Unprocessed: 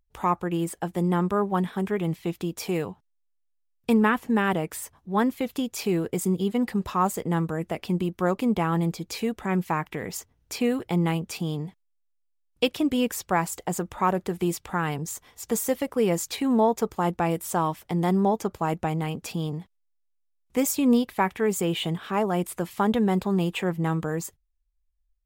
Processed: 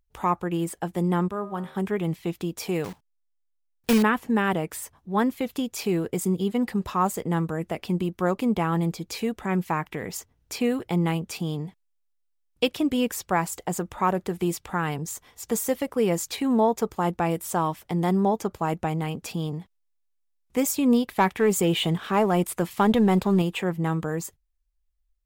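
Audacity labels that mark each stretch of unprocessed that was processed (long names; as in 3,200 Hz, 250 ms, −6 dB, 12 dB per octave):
1.280000	1.750000	tuned comb filter 77 Hz, decay 0.83 s
2.840000	4.040000	one scale factor per block 3 bits
21.060000	23.420000	leveller curve on the samples passes 1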